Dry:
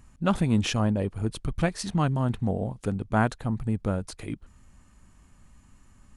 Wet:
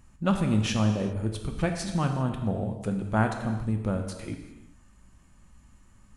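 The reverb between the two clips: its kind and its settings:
reverb whose tail is shaped and stops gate 420 ms falling, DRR 4 dB
level −2.5 dB

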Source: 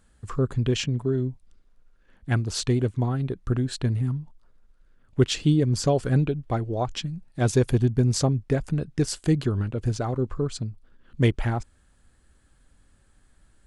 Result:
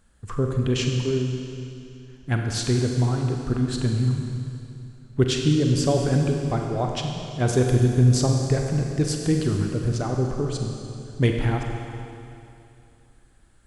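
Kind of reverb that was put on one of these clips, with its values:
four-comb reverb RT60 2.7 s, combs from 32 ms, DRR 2 dB

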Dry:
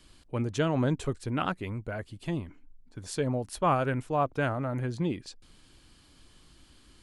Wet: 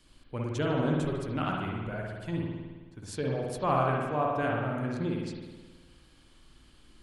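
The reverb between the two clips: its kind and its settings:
spring reverb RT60 1.4 s, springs 53 ms, chirp 25 ms, DRR −2 dB
level −4.5 dB

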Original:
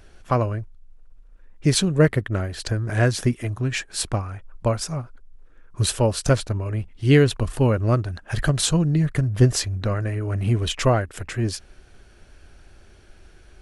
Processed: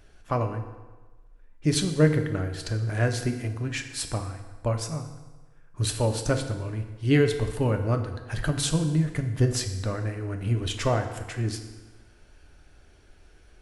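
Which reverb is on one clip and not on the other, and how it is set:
feedback delay network reverb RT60 1.3 s, low-frequency decay 0.9×, high-frequency decay 0.8×, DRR 5.5 dB
level −6 dB

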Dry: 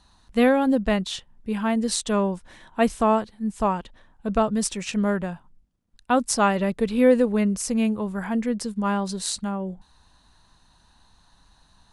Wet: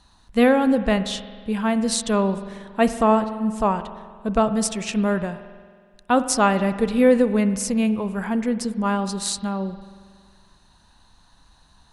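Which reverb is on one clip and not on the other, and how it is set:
spring reverb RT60 1.8 s, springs 46 ms, chirp 75 ms, DRR 11.5 dB
level +2 dB

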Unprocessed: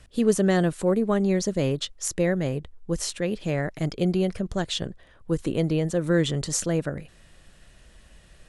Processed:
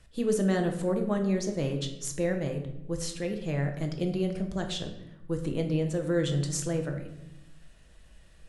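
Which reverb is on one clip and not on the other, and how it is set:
rectangular room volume 280 cubic metres, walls mixed, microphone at 0.68 metres
level −7 dB

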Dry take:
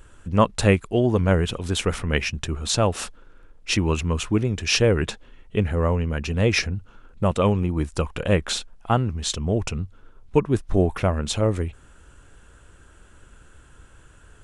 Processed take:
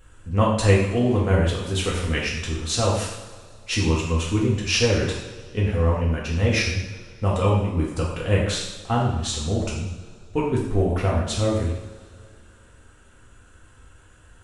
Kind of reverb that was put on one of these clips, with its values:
coupled-rooms reverb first 0.8 s, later 2.7 s, from −18 dB, DRR −4.5 dB
level −6 dB

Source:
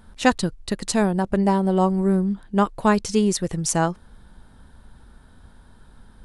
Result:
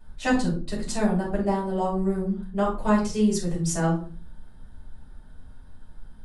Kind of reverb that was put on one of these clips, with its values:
rectangular room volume 240 cubic metres, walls furnished, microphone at 6.3 metres
level −15.5 dB

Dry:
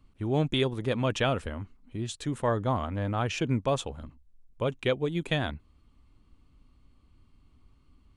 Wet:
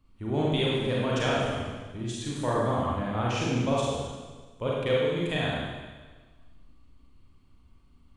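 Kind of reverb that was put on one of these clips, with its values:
four-comb reverb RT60 1.4 s, combs from 33 ms, DRR −5.5 dB
level −4.5 dB

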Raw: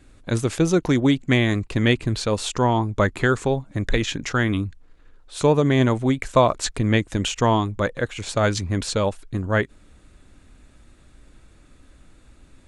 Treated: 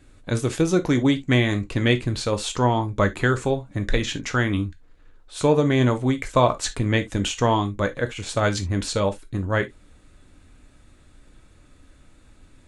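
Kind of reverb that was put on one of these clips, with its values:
reverb whose tail is shaped and stops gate 90 ms falling, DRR 7 dB
level −1.5 dB

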